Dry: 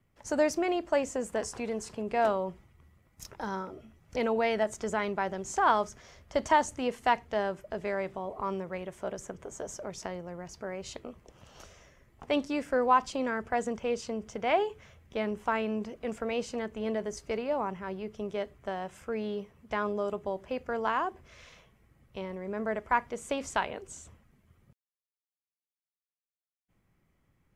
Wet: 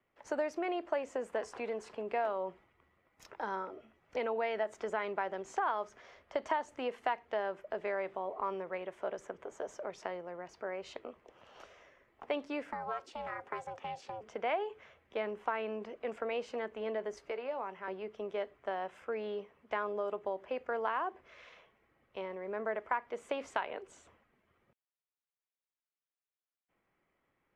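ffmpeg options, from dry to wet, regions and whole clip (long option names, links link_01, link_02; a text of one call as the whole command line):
ffmpeg -i in.wav -filter_complex "[0:a]asettb=1/sr,asplit=3[link_01][link_02][link_03];[link_01]atrim=end=12.724[link_04];[link_02]atrim=start=12.72:end=14.21,asetpts=PTS-STARTPTS,afade=type=in:duration=0.004:curve=qsin,afade=type=out:start_time=1.486:duration=0.004:curve=qsin,highshelf=frequency=5800:gain=5.5,acrossover=split=210|4500[link_05][link_06][link_07];[link_05]acompressor=threshold=-51dB:ratio=4[link_08];[link_06]acompressor=threshold=-33dB:ratio=4[link_09];[link_07]acompressor=threshold=-44dB:ratio=4[link_10];[link_08][link_09][link_10]amix=inputs=3:normalize=0,aeval=exprs='val(0)*sin(2*PI*320*n/s)':channel_layout=same[link_11];[link_03]atrim=start=14.206[link_12];[link_04][link_11]acrossfade=duration=0.004:curve1=hsin:curve2=qsin[link_13];[link_13][link_12]acrossfade=duration=0.004:curve1=qsin:curve2=hsin,asettb=1/sr,asplit=3[link_14][link_15][link_16];[link_14]atrim=end=17.294[link_17];[link_15]atrim=start=17.29:end=17.88,asetpts=PTS-STARTPTS,afade=type=in:duration=0.004:curve=qsin,afade=type=out:start_time=0.586:duration=0.004:curve=qsin,acrossover=split=380|2400[link_18][link_19][link_20];[link_18]acompressor=threshold=-48dB:ratio=4[link_21];[link_19]acompressor=threshold=-36dB:ratio=4[link_22];[link_20]acompressor=threshold=-52dB:ratio=4[link_23];[link_21][link_22][link_23]amix=inputs=3:normalize=0,asplit=2[link_24][link_25];[link_25]adelay=16,volume=-12dB[link_26];[link_24][link_26]amix=inputs=2:normalize=0,atrim=end_sample=26019[link_27];[link_16]atrim=start=17.876[link_28];[link_17][link_27]acrossfade=duration=0.004:curve1=hsin:curve2=qsin[link_29];[link_29][link_28]acrossfade=duration=0.004:curve1=qsin:curve2=hsin,acompressor=threshold=-29dB:ratio=6,acrossover=split=310 3500:gain=0.126 1 0.141[link_30][link_31][link_32];[link_30][link_31][link_32]amix=inputs=3:normalize=0" out.wav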